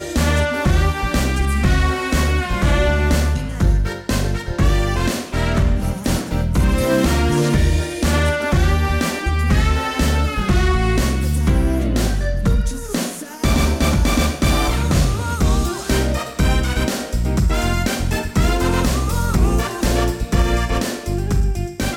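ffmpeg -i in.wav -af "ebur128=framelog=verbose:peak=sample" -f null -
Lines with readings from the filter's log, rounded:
Integrated loudness:
  I:         -18.8 LUFS
  Threshold: -28.8 LUFS
Loudness range:
  LRA:         1.8 LU
  Threshold: -38.8 LUFS
  LRA low:   -19.6 LUFS
  LRA high:  -17.9 LUFS
Sample peak:
  Peak:       -5.7 dBFS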